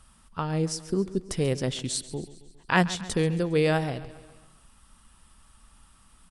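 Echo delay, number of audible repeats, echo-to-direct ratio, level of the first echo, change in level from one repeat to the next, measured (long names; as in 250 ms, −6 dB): 136 ms, 4, −15.5 dB, −17.0 dB, −5.0 dB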